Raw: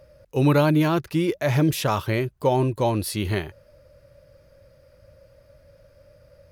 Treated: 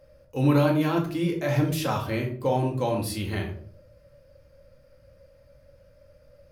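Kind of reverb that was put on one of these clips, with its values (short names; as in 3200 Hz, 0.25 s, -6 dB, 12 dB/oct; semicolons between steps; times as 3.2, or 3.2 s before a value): shoebox room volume 500 m³, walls furnished, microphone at 2.1 m; gain -6.5 dB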